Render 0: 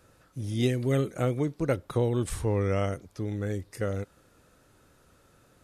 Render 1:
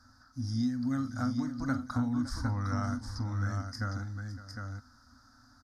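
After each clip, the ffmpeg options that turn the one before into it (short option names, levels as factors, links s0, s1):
-af "firequalizer=gain_entry='entry(110,0);entry(170,-19);entry(250,11);entry(360,-30);entry(720,-4);entry(1500,5);entry(2600,-28);entry(4900,12);entry(7700,-12)':delay=0.05:min_phase=1,acompressor=threshold=0.0355:ratio=4,aecho=1:1:45|561|757:0.211|0.178|0.531"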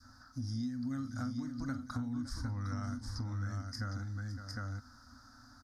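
-af "adynamicequalizer=threshold=0.00282:dfrequency=790:dqfactor=0.75:tfrequency=790:tqfactor=0.75:attack=5:release=100:ratio=0.375:range=3:mode=cutabove:tftype=bell,acompressor=threshold=0.00891:ratio=2.5,volume=1.33"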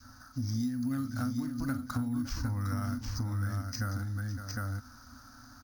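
-af "acrusher=samples=4:mix=1:aa=0.000001,volume=1.78"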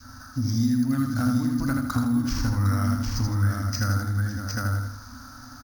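-af "aecho=1:1:80|160|240|320|400:0.631|0.259|0.106|0.0435|0.0178,volume=2.37"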